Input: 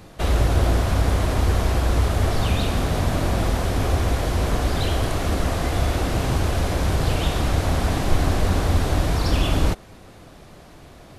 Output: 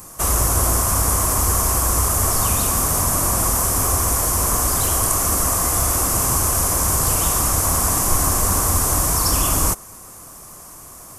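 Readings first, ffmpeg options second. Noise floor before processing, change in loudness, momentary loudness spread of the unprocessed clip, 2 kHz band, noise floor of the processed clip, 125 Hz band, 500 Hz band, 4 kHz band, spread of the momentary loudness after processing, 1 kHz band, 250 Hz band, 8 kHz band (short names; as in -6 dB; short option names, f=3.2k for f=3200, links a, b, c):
-45 dBFS, +5.5 dB, 3 LU, 0.0 dB, -40 dBFS, -2.5 dB, -1.5 dB, +2.0 dB, 1 LU, +5.0 dB, -2.5 dB, +20.0 dB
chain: -af "equalizer=f=1.1k:t=o:w=0.55:g=13,aexciter=amount=13.2:drive=6.1:freq=5.8k,volume=-2.5dB"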